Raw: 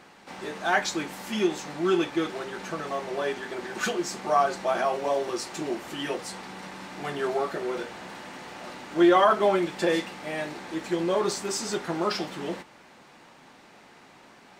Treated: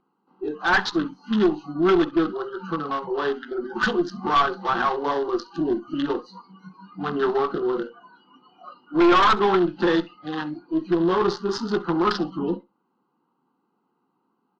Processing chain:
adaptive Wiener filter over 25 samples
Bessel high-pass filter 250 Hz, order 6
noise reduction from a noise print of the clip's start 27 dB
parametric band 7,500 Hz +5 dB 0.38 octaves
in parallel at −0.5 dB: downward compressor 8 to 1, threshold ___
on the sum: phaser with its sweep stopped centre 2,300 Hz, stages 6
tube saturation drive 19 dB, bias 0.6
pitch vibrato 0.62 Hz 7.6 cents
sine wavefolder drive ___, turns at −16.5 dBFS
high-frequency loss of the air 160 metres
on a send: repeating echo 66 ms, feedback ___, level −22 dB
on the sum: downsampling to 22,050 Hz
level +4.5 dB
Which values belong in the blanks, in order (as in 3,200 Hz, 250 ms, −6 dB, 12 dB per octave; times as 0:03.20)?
−38 dBFS, 7 dB, 15%